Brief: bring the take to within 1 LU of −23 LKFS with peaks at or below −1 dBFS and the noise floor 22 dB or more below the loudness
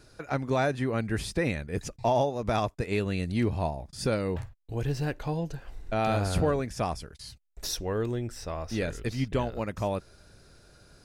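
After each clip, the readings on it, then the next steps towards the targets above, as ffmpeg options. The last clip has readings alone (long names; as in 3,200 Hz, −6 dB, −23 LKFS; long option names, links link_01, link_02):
integrated loudness −30.5 LKFS; sample peak −14.0 dBFS; target loudness −23.0 LKFS
→ -af "volume=7.5dB"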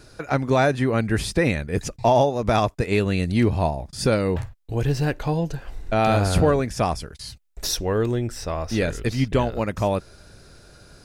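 integrated loudness −23.0 LKFS; sample peak −6.5 dBFS; background noise floor −50 dBFS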